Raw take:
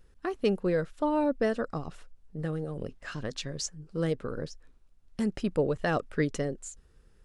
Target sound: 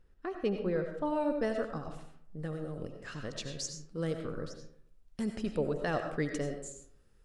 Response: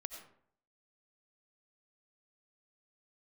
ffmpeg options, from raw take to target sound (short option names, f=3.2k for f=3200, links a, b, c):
-filter_complex "[0:a]asetnsamples=n=441:p=0,asendcmd='1.05 highshelf g 2.5',highshelf=f=4.9k:g=-11.5[a];[1:a]atrim=start_sample=2205[b];[a][b]afir=irnorm=-1:irlink=0,volume=-1.5dB"